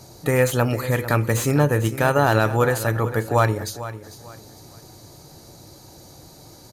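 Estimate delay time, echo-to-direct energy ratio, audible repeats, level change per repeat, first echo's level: 0.449 s, -13.5 dB, 2, -11.0 dB, -14.0 dB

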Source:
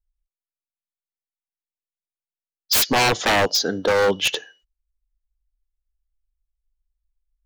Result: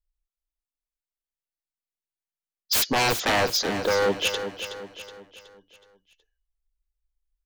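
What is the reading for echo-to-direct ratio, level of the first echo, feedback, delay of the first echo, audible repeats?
-8.5 dB, -9.5 dB, 45%, 0.371 s, 4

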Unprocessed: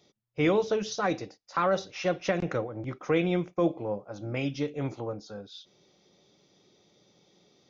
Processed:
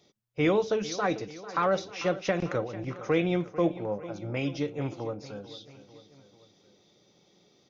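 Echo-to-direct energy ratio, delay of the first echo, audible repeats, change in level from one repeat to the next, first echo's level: -14.5 dB, 0.445 s, 3, -5.0 dB, -16.0 dB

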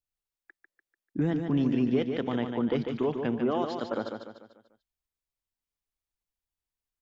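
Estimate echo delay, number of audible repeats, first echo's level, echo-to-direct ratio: 0.147 s, 5, -6.0 dB, -5.0 dB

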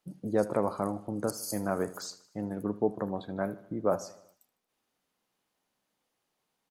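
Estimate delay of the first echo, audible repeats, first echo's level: 77 ms, 4, -18.0 dB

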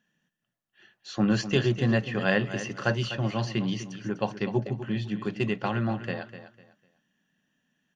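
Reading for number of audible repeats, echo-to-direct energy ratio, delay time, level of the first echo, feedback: 2, -11.5 dB, 0.25 s, -12.0 dB, 26%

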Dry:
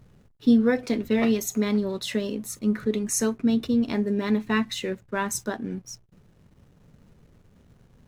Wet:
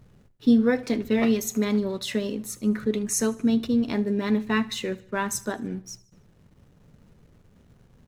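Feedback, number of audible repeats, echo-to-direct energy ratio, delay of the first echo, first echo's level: 50%, 3, -20.0 dB, 75 ms, -21.0 dB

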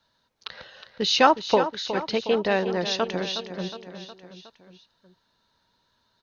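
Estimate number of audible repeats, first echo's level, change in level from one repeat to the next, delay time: 4, -11.0 dB, -4.5 dB, 0.364 s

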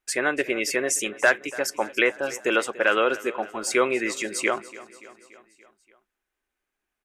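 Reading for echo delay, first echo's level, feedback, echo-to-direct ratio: 0.288 s, -18.5 dB, 59%, -16.5 dB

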